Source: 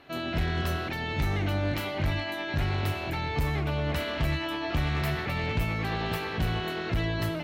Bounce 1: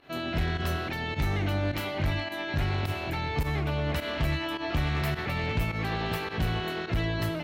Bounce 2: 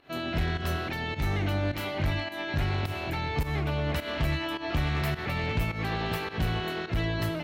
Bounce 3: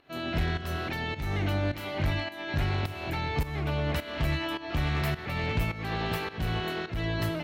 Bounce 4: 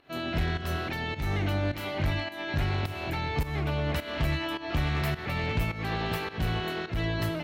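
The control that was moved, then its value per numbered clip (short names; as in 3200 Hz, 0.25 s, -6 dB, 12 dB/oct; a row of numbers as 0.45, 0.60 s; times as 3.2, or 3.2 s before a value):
pump, release: 69, 138, 364, 246 ms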